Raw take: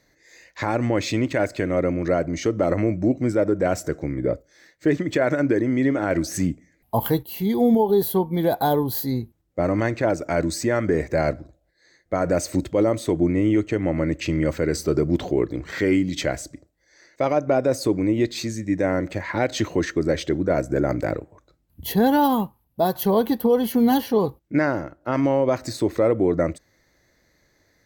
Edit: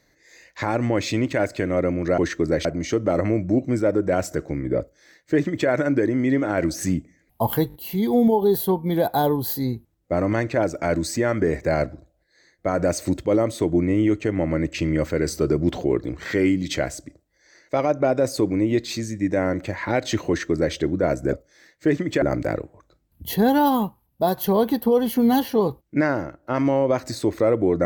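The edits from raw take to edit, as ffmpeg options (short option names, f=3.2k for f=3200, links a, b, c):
-filter_complex "[0:a]asplit=8[a][b][c][d][e][f][g][h];[a]atrim=end=2.182[i];[b]atrim=start=19.748:end=20.222[j];[c]atrim=start=2.178:end=7.232[k];[d]atrim=start=7.208:end=7.232[l];[e]atrim=start=7.208:end=7.232[m];[f]atrim=start=7.208:end=20.802[n];[g]atrim=start=4.328:end=5.222[o];[h]atrim=start=20.798[p];[i][j]acrossfade=d=0.004:c1=hsin:c2=hsin[q];[q][k]acrossfade=d=0.004:c1=hsin:c2=hsin[r];[r][l]acrossfade=d=0.004:c1=hsin:c2=hsin[s];[s][m]acrossfade=d=0.004:c1=hsin:c2=hsin[t];[t][n]acrossfade=d=0.004:c1=hsin:c2=hsin[u];[u][o]acrossfade=d=0.004:c1=hsin:c2=hsin[v];[v][p]acrossfade=d=0.004:c1=hsin:c2=hsin"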